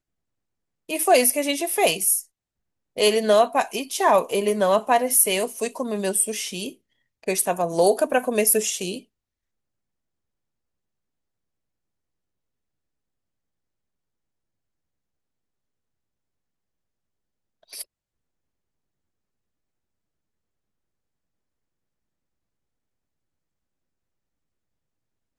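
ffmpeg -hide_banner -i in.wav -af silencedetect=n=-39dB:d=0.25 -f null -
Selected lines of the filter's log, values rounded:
silence_start: 0.00
silence_end: 0.89 | silence_duration: 0.89
silence_start: 2.23
silence_end: 2.97 | silence_duration: 0.74
silence_start: 6.72
silence_end: 7.23 | silence_duration: 0.51
silence_start: 9.00
silence_end: 17.73 | silence_duration: 8.73
silence_start: 17.83
silence_end: 25.39 | silence_duration: 7.55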